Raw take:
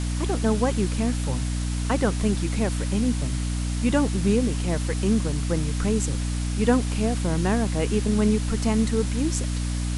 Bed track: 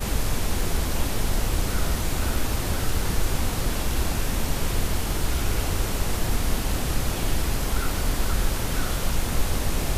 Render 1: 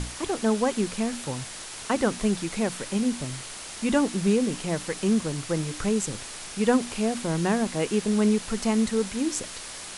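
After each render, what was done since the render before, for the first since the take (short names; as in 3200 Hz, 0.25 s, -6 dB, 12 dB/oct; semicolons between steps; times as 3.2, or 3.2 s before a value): notches 60/120/180/240/300 Hz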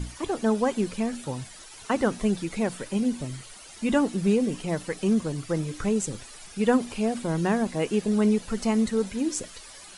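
denoiser 12 dB, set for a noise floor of -39 dBFS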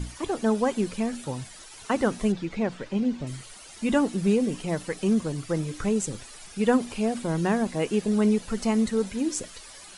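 2.32–3.27 air absorption 130 m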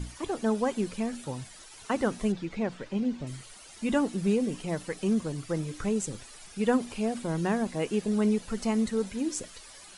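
gain -3.5 dB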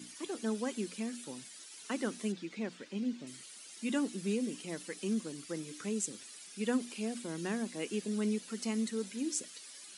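HPF 230 Hz 24 dB/oct; bell 770 Hz -13 dB 2.2 oct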